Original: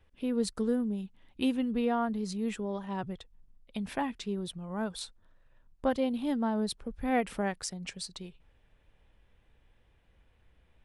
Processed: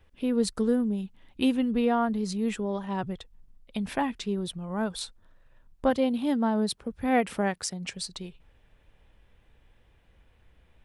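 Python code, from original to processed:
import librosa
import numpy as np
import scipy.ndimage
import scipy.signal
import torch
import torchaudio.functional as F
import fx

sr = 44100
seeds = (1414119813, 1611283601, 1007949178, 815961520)

y = fx.highpass(x, sr, hz=69.0, slope=12, at=(5.9, 7.93))
y = F.gain(torch.from_numpy(y), 4.5).numpy()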